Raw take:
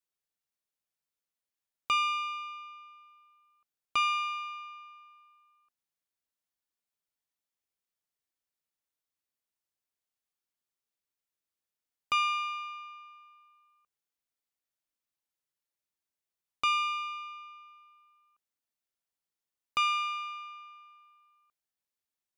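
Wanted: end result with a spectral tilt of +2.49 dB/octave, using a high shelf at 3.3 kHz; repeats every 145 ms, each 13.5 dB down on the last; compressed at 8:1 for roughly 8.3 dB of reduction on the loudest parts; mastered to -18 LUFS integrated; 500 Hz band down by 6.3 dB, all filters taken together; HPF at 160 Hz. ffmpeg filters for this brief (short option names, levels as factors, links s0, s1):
-af "highpass=160,equalizer=f=500:t=o:g=-8.5,highshelf=f=3300:g=4.5,acompressor=threshold=0.0282:ratio=8,aecho=1:1:145|290:0.211|0.0444,volume=7.94"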